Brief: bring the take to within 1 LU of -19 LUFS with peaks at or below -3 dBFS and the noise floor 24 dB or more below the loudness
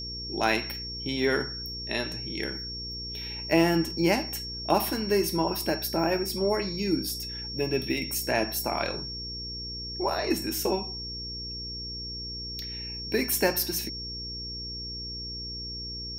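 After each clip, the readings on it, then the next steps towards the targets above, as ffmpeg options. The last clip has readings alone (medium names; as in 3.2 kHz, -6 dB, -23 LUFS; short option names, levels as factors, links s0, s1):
hum 60 Hz; highest harmonic 480 Hz; hum level -40 dBFS; steady tone 5.5 kHz; tone level -35 dBFS; loudness -29.0 LUFS; peak level -8.0 dBFS; loudness target -19.0 LUFS
-> -af "bandreject=f=60:t=h:w=4,bandreject=f=120:t=h:w=4,bandreject=f=180:t=h:w=4,bandreject=f=240:t=h:w=4,bandreject=f=300:t=h:w=4,bandreject=f=360:t=h:w=4,bandreject=f=420:t=h:w=4,bandreject=f=480:t=h:w=4"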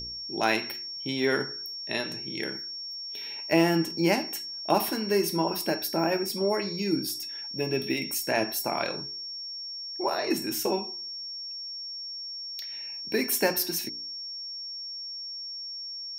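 hum not found; steady tone 5.5 kHz; tone level -35 dBFS
-> -af "bandreject=f=5500:w=30"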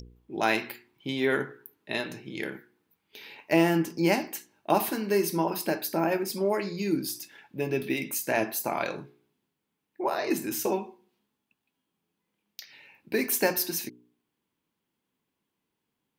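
steady tone not found; loudness -28.5 LUFS; peak level -8.5 dBFS; loudness target -19.0 LUFS
-> -af "volume=2.99,alimiter=limit=0.708:level=0:latency=1"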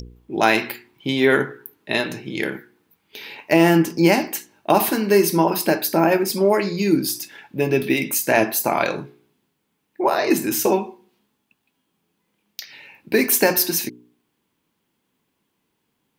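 loudness -19.5 LUFS; peak level -3.0 dBFS; noise floor -73 dBFS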